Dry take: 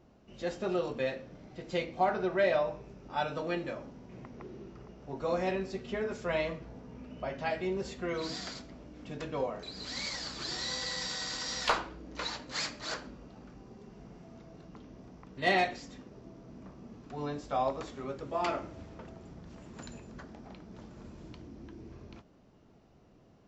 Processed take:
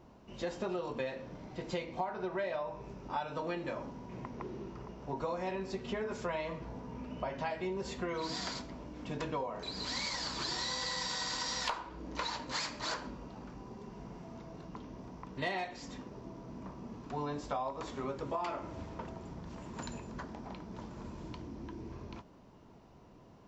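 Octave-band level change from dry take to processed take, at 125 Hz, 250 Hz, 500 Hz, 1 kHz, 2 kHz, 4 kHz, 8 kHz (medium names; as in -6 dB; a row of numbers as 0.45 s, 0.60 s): -0.5 dB, -1.5 dB, -5.0 dB, -3.0 dB, -5.0 dB, -1.0 dB, -0.5 dB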